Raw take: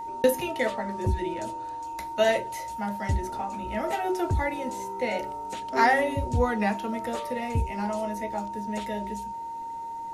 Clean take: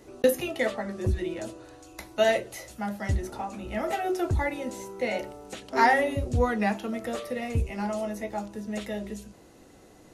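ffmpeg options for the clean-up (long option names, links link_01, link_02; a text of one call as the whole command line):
ffmpeg -i in.wav -af "bandreject=frequency=920:width=30" out.wav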